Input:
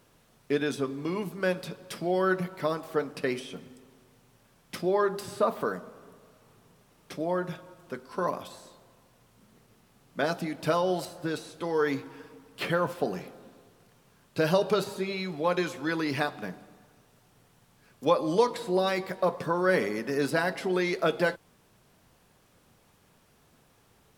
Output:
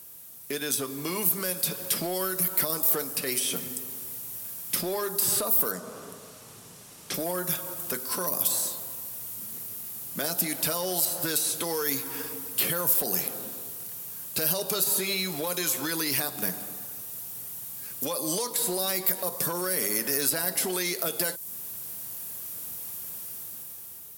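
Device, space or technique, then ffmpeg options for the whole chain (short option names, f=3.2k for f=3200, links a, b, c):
FM broadcast chain: -filter_complex "[0:a]highpass=61,dynaudnorm=f=340:g=7:m=9.5dB,acrossover=split=550|4900[a][b][c];[a]acompressor=threshold=-33dB:ratio=4[d];[b]acompressor=threshold=-34dB:ratio=4[e];[c]acompressor=threshold=-44dB:ratio=4[f];[d][e][f]amix=inputs=3:normalize=0,aemphasis=mode=production:type=50fm,alimiter=limit=-21.5dB:level=0:latency=1:release=37,asoftclip=type=hard:threshold=-24.5dB,lowpass=f=15k:w=0.5412,lowpass=f=15k:w=1.3066,aemphasis=mode=production:type=50fm,asettb=1/sr,asplit=3[g][h][i];[g]atrim=end=5.714[j];[h]atrim=start=5.71:end=7.14,asetpts=PTS-STARTPTS,afade=t=in:d=0.004:c=qsin,afade=t=out:st=1.426:d=0.004:c=qsin,lowpass=6.9k[k];[i]atrim=start=7.136[l];[j][k]acrossfade=d=0.004:c1=hsin:c2=qsin[m];[m][l]acrossfade=d=0.004:c1=qsin:c2=hsin"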